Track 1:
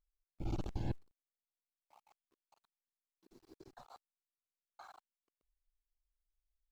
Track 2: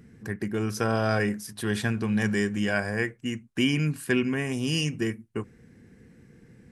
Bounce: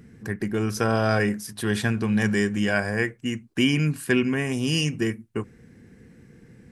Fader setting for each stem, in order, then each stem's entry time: -18.0, +3.0 dB; 0.00, 0.00 s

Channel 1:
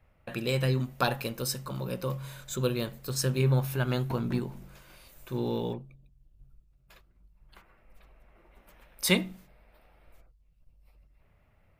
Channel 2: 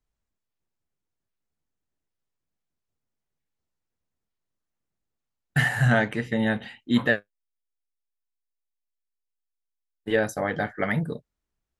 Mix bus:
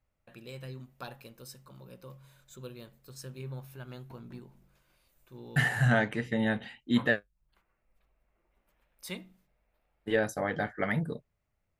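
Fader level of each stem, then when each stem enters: -16.0, -4.5 dB; 0.00, 0.00 s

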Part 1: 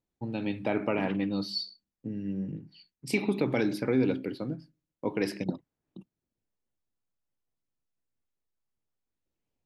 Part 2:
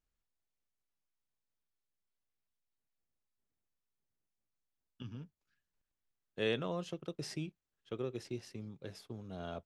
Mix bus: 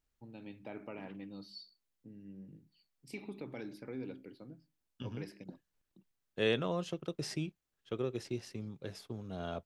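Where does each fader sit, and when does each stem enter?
-17.0, +3.0 dB; 0.00, 0.00 s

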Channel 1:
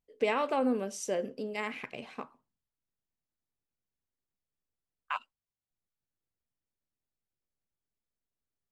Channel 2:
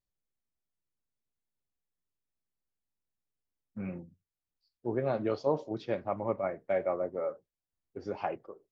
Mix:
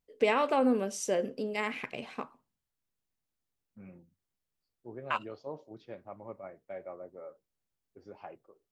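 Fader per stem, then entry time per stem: +2.5, -12.5 dB; 0.00, 0.00 s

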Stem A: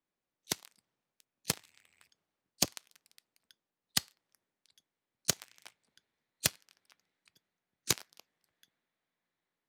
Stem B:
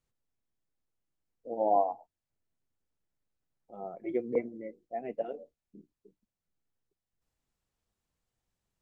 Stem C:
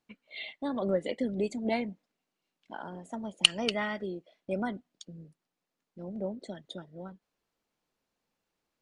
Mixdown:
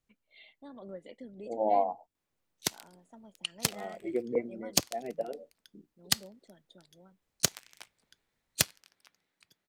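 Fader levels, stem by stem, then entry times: +3.0, -0.5, -15.5 dB; 2.15, 0.00, 0.00 s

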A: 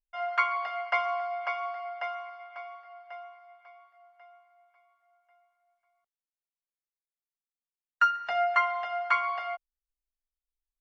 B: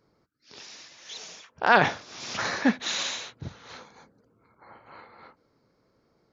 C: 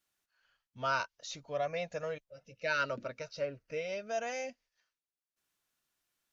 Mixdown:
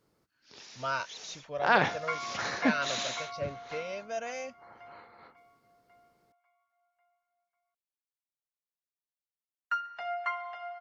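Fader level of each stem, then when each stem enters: -8.5, -5.0, -0.5 dB; 1.70, 0.00, 0.00 s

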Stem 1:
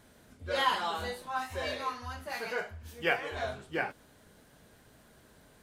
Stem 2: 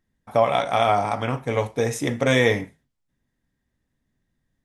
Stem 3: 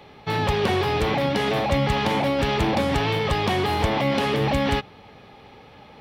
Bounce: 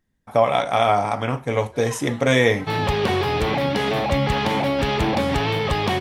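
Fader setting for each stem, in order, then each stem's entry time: -10.5, +1.5, +1.0 dB; 1.25, 0.00, 2.40 s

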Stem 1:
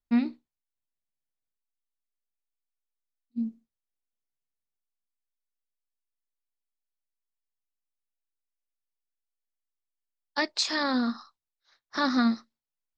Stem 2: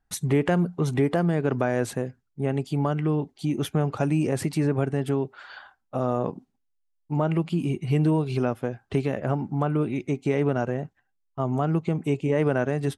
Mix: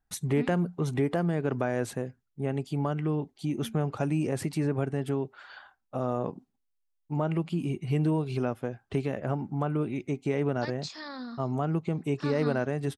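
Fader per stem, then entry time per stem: -13.0, -4.5 dB; 0.25, 0.00 s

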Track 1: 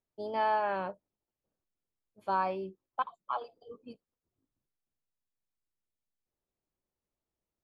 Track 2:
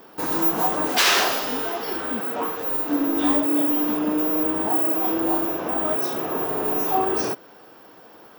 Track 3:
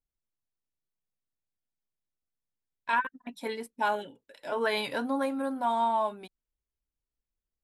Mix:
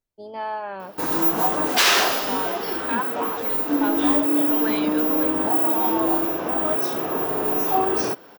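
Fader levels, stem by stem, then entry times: -0.5, +1.0, -1.5 dB; 0.00, 0.80, 0.00 s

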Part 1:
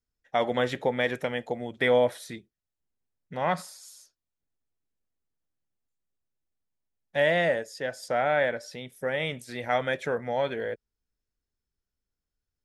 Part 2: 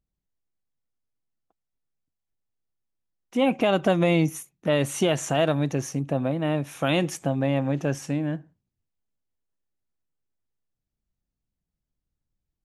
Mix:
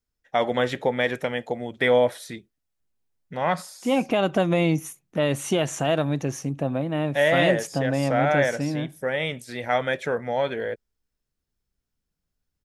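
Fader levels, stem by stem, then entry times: +3.0, -0.5 dB; 0.00, 0.50 s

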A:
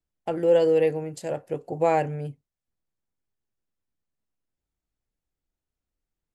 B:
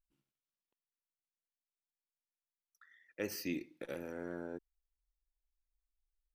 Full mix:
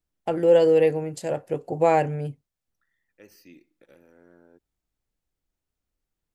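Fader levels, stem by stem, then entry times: +2.5, -12.0 dB; 0.00, 0.00 s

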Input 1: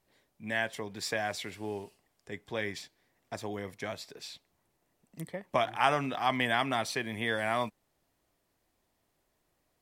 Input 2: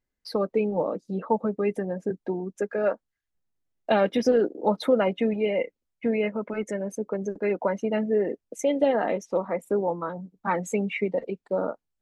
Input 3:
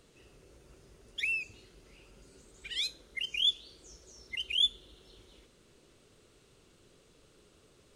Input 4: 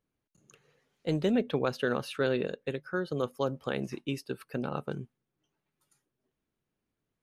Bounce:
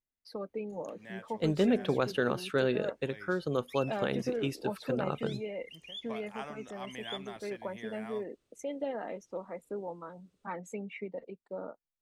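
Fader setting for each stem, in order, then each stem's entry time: -16.0, -13.5, -16.5, 0.0 dB; 0.55, 0.00, 2.50, 0.35 s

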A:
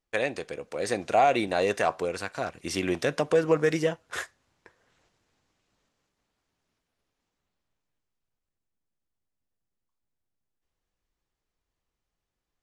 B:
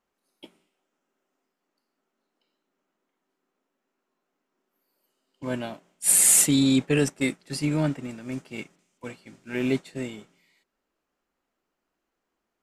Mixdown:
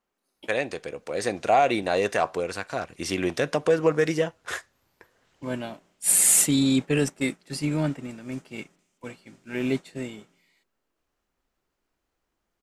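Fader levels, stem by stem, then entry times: +1.5, -1.0 dB; 0.35, 0.00 s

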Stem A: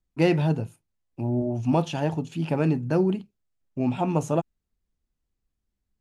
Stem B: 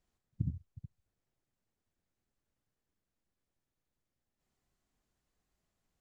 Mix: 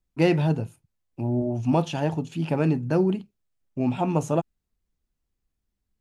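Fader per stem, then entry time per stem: +0.5, -18.5 dB; 0.00, 0.00 s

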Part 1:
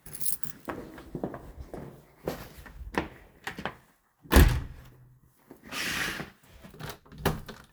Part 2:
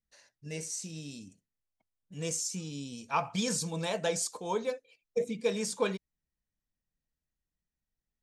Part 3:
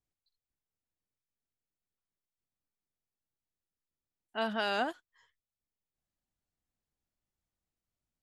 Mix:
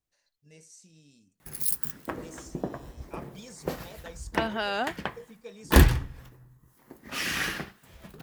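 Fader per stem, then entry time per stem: +1.5, -15.0, +2.0 dB; 1.40, 0.00, 0.00 s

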